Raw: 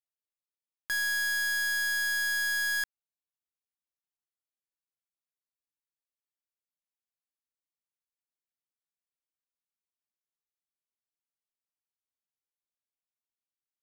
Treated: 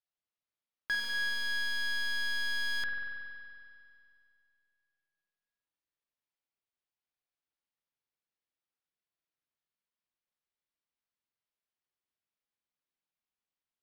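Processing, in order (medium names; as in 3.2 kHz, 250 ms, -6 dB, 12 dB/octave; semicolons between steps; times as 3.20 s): Savitzky-Golay filter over 15 samples; spring tank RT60 2.4 s, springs 46 ms, chirp 35 ms, DRR 1 dB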